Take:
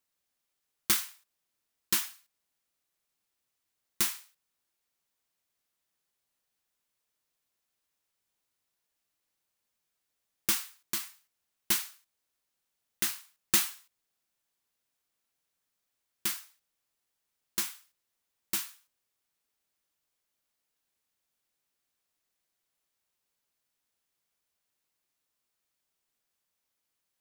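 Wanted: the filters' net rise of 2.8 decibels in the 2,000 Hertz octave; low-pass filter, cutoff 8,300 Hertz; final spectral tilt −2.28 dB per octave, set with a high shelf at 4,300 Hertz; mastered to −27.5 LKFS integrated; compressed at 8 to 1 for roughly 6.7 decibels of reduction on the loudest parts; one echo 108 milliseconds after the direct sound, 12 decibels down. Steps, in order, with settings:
low-pass filter 8,300 Hz
parametric band 2,000 Hz +4.5 dB
high-shelf EQ 4,300 Hz −5 dB
downward compressor 8 to 1, threshold −34 dBFS
single-tap delay 108 ms −12 dB
level +15 dB

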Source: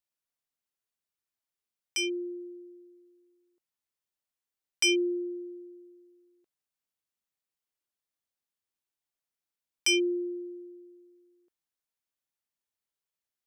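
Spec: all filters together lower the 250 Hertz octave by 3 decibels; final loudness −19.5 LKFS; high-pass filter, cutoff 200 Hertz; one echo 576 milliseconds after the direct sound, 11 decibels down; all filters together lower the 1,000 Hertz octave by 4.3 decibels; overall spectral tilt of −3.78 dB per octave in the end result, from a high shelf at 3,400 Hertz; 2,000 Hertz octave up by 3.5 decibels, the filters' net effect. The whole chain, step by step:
high-pass filter 200 Hz
parametric band 250 Hz −4 dB
parametric band 1,000 Hz −8 dB
parametric band 2,000 Hz +8 dB
high-shelf EQ 3,400 Hz −5.5 dB
single-tap delay 576 ms −11 dB
level +10.5 dB

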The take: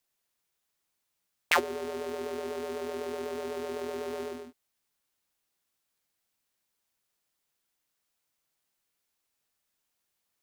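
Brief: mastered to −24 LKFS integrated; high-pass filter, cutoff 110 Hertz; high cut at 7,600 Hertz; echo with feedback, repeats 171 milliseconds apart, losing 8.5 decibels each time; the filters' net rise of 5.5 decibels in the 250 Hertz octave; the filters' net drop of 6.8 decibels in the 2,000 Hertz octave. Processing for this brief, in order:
high-pass filter 110 Hz
low-pass filter 7,600 Hz
parametric band 250 Hz +6.5 dB
parametric band 2,000 Hz −8.5 dB
repeating echo 171 ms, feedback 38%, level −8.5 dB
level +9.5 dB

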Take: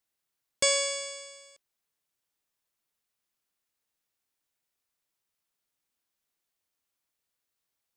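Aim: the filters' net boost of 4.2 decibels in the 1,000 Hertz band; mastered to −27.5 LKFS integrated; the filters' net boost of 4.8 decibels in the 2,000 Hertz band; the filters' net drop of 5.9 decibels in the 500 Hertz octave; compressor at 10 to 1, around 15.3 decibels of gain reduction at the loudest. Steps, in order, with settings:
parametric band 500 Hz −8 dB
parametric band 1,000 Hz +4.5 dB
parametric band 2,000 Hz +5 dB
downward compressor 10 to 1, threshold −35 dBFS
level +11.5 dB

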